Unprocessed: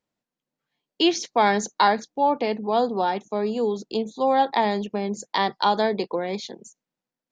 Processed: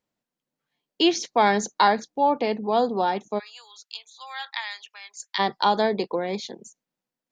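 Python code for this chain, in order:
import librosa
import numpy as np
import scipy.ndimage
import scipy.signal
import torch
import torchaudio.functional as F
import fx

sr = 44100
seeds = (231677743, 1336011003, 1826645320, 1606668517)

y = fx.highpass(x, sr, hz=1400.0, slope=24, at=(3.38, 5.38), fade=0.02)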